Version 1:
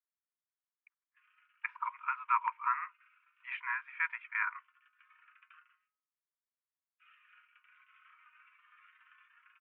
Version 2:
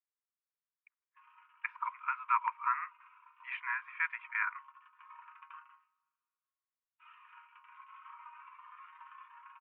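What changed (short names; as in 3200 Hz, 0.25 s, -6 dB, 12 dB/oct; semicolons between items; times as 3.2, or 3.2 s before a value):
background: remove steep high-pass 1400 Hz 48 dB/oct; reverb: on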